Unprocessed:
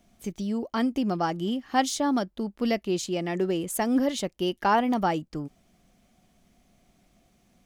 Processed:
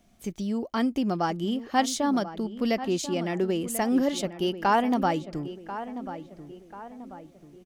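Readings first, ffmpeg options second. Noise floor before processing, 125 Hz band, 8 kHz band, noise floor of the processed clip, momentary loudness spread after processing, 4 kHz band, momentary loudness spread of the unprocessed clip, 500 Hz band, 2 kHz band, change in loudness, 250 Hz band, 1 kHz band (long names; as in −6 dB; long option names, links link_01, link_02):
−67 dBFS, +0.5 dB, 0.0 dB, −55 dBFS, 19 LU, 0.0 dB, 9 LU, +0.5 dB, 0.0 dB, 0.0 dB, +0.5 dB, +0.5 dB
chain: -filter_complex "[0:a]asplit=2[link_01][link_02];[link_02]adelay=1039,lowpass=frequency=2000:poles=1,volume=-12dB,asplit=2[link_03][link_04];[link_04]adelay=1039,lowpass=frequency=2000:poles=1,volume=0.47,asplit=2[link_05][link_06];[link_06]adelay=1039,lowpass=frequency=2000:poles=1,volume=0.47,asplit=2[link_07][link_08];[link_08]adelay=1039,lowpass=frequency=2000:poles=1,volume=0.47,asplit=2[link_09][link_10];[link_10]adelay=1039,lowpass=frequency=2000:poles=1,volume=0.47[link_11];[link_01][link_03][link_05][link_07][link_09][link_11]amix=inputs=6:normalize=0"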